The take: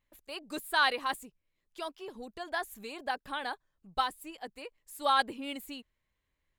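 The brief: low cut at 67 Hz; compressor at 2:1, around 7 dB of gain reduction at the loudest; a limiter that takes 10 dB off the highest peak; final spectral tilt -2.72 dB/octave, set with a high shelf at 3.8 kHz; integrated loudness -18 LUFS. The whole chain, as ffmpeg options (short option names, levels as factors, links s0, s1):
-af "highpass=67,highshelf=f=3800:g=-5.5,acompressor=threshold=0.0178:ratio=2,volume=20,alimiter=limit=0.501:level=0:latency=1"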